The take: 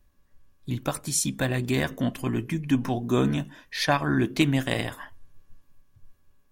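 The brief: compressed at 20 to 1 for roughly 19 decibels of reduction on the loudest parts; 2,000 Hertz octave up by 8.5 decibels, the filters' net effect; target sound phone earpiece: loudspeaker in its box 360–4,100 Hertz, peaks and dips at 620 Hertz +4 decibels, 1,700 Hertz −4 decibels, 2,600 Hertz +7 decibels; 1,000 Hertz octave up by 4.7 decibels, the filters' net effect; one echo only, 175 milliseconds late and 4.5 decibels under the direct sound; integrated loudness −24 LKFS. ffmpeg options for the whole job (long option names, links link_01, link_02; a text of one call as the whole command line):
ffmpeg -i in.wav -af "equalizer=frequency=1000:width_type=o:gain=3.5,equalizer=frequency=2000:width_type=o:gain=9,acompressor=threshold=-32dB:ratio=20,highpass=360,equalizer=frequency=620:width_type=q:width=4:gain=4,equalizer=frequency=1700:width_type=q:width=4:gain=-4,equalizer=frequency=2600:width_type=q:width=4:gain=7,lowpass=frequency=4100:width=0.5412,lowpass=frequency=4100:width=1.3066,aecho=1:1:175:0.596,volume=13.5dB" out.wav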